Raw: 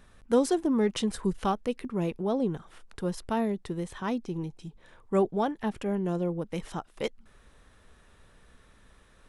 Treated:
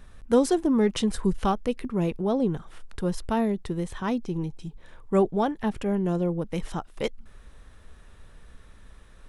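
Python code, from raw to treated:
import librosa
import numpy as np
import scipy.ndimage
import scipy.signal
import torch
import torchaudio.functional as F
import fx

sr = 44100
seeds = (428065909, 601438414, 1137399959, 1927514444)

y = fx.low_shelf(x, sr, hz=89.0, db=9.5)
y = y * librosa.db_to_amplitude(2.5)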